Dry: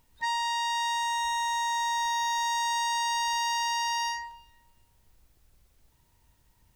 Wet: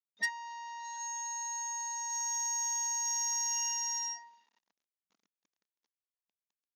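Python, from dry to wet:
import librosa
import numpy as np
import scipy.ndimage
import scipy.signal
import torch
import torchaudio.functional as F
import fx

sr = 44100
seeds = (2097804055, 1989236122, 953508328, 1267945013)

y = fx.noise_reduce_blind(x, sr, reduce_db=22)
y = y + 0.75 * np.pad(y, (int(4.4 * sr / 1000.0), 0))[:len(y)]
y = fx.quant_dither(y, sr, seeds[0], bits=12, dither='none')
y = fx.brickwall_bandpass(y, sr, low_hz=170.0, high_hz=7000.0)
y = fx.buffer_glitch(y, sr, at_s=(5.05,), block=256, repeats=8)
y = fx.transformer_sat(y, sr, knee_hz=3500.0)
y = y * librosa.db_to_amplitude(4.5)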